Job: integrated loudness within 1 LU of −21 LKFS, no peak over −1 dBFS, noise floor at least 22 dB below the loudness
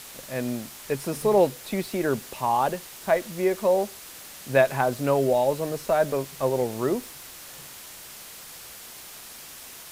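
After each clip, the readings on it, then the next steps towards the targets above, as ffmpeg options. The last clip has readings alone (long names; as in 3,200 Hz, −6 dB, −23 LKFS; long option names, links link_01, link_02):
background noise floor −43 dBFS; target noise floor −48 dBFS; integrated loudness −25.5 LKFS; sample peak −7.0 dBFS; target loudness −21.0 LKFS
→ -af "afftdn=noise_reduction=6:noise_floor=-43"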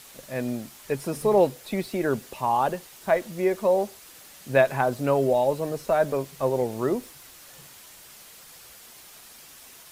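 background noise floor −48 dBFS; integrated loudness −25.5 LKFS; sample peak −7.0 dBFS; target loudness −21.0 LKFS
→ -af "volume=4.5dB"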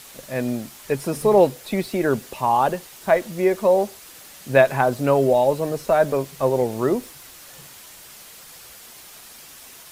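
integrated loudness −21.0 LKFS; sample peak −2.5 dBFS; background noise floor −44 dBFS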